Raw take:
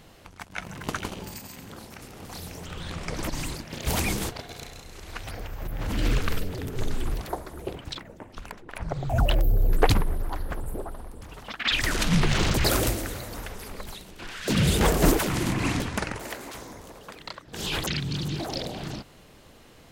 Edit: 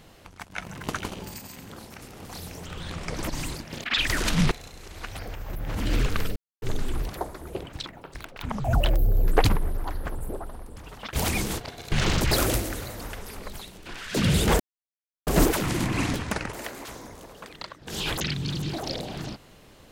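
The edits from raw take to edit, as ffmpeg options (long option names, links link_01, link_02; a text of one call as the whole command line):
ffmpeg -i in.wav -filter_complex "[0:a]asplit=10[link_01][link_02][link_03][link_04][link_05][link_06][link_07][link_08][link_09][link_10];[link_01]atrim=end=3.842[link_11];[link_02]atrim=start=11.578:end=12.252[link_12];[link_03]atrim=start=4.628:end=6.48,asetpts=PTS-STARTPTS,afade=type=out:start_time=1.848:duration=0.004:curve=hsin[link_13];[link_04]atrim=start=6.48:end=6.74,asetpts=PTS-STARTPTS,volume=0[link_14];[link_05]atrim=start=6.74:end=8.084,asetpts=PTS-STARTPTS,afade=type=in:duration=0.004:curve=hsin[link_15];[link_06]atrim=start=8.08:end=9.05,asetpts=PTS-STARTPTS,asetrate=67032,aresample=44100[link_16];[link_07]atrim=start=9.046:end=11.582[link_17];[link_08]atrim=start=3.838:end=4.632[link_18];[link_09]atrim=start=12.248:end=14.93,asetpts=PTS-STARTPTS,afade=type=out:start_time=2.678:duration=0.004:curve=hsin,apad=pad_dur=0.67[link_19];[link_10]atrim=start=14.93,asetpts=PTS-STARTPTS,afade=type=in:duration=0.004:curve=hsin[link_20];[link_11][link_12]acrossfade=duration=0.004:curve1=hsin:curve2=hsin[link_21];[link_13][link_14][link_15]concat=n=3:v=0:a=1[link_22];[link_21][link_22]acrossfade=duration=0.004:curve1=hsin:curve2=hsin[link_23];[link_23][link_16]acrossfade=duration=0.004:curve1=hsin:curve2=hsin[link_24];[link_24][link_17]acrossfade=duration=0.004:curve1=hsin:curve2=hsin[link_25];[link_25][link_18]acrossfade=duration=0.004:curve1=hsin:curve2=hsin[link_26];[link_19][link_20]concat=n=2:v=0:a=1[link_27];[link_26][link_27]acrossfade=duration=0.004:curve1=hsin:curve2=hsin" out.wav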